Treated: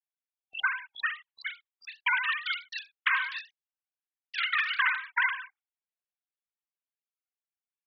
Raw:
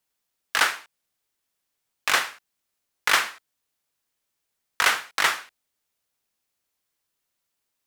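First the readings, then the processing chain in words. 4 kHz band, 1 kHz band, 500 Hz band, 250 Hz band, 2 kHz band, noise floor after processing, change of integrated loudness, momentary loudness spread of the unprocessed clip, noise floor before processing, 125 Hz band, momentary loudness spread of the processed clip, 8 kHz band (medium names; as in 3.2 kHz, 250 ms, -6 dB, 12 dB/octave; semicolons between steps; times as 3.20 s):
-7.5 dB, -6.0 dB, under -35 dB, under -35 dB, -2.0 dB, under -85 dBFS, -6.0 dB, 12 LU, -80 dBFS, no reading, 14 LU, under -30 dB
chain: formants replaced by sine waves; gate with hold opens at -44 dBFS; spectral selection erased 0.31–0.64 s, 810–2800 Hz; peaking EQ 880 Hz -10 dB 0.22 oct; ever faster or slower copies 498 ms, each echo +3 st, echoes 3, each echo -6 dB; compression 6:1, threshold -29 dBFS, peak gain reduction 13 dB; dynamic bell 1.7 kHz, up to +3 dB, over -44 dBFS; warped record 78 rpm, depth 100 cents; trim +3 dB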